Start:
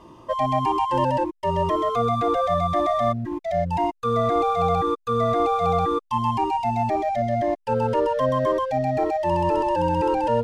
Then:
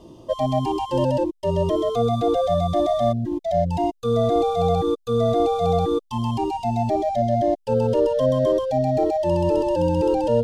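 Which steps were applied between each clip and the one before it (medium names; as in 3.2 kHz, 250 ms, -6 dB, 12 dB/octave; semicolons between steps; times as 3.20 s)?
high-order bell 1.5 kHz -13.5 dB; trim +3.5 dB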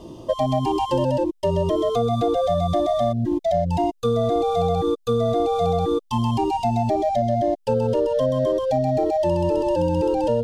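compression, threshold -23 dBFS, peak gain reduction 9 dB; trim +5.5 dB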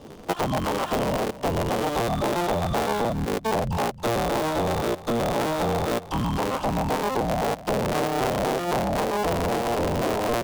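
cycle switcher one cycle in 3, inverted; delay 272 ms -16 dB; trim -4 dB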